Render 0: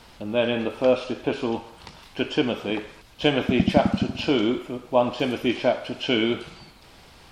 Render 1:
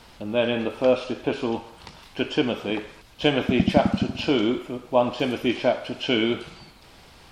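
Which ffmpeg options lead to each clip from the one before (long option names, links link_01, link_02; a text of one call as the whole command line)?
ffmpeg -i in.wav -af anull out.wav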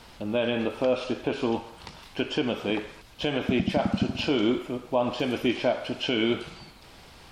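ffmpeg -i in.wav -af "alimiter=limit=-13.5dB:level=0:latency=1:release=131" out.wav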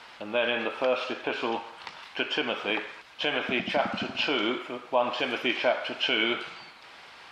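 ffmpeg -i in.wav -af "bandpass=frequency=1700:width_type=q:width=0.82:csg=0,volume=6.5dB" out.wav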